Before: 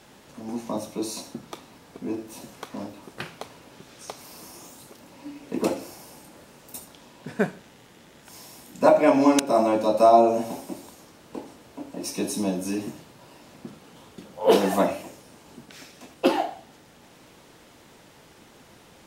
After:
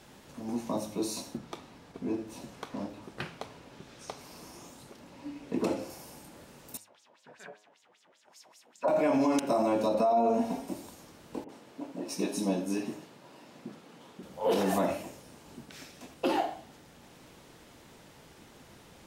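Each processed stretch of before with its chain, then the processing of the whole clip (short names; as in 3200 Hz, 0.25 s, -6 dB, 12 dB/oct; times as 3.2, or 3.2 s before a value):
1.37–5.9 high shelf 9600 Hz -12 dB + gate with hold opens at -41 dBFS, closes at -47 dBFS
6.77–8.88 HPF 84 Hz + de-hum 143.7 Hz, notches 31 + LFO band-pass sine 5.1 Hz 560–7400 Hz
9.94–10.68 LPF 3600 Hz 6 dB/oct + comb 4.3 ms, depth 64%
11.44–14.23 HPF 180 Hz + high shelf 6800 Hz -7.5 dB + dispersion highs, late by 49 ms, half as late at 550 Hz
whole clip: low shelf 160 Hz +4.5 dB; de-hum 105 Hz, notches 31; limiter -15.5 dBFS; gain -3 dB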